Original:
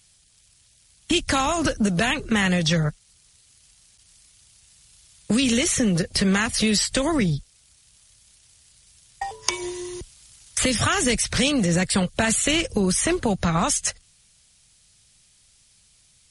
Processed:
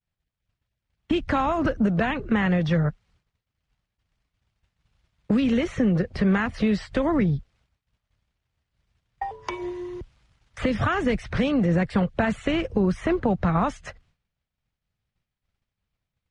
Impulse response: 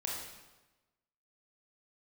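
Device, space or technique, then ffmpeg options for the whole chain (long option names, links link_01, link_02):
hearing-loss simulation: -af "lowpass=1600,agate=range=-33dB:threshold=-56dB:ratio=3:detection=peak"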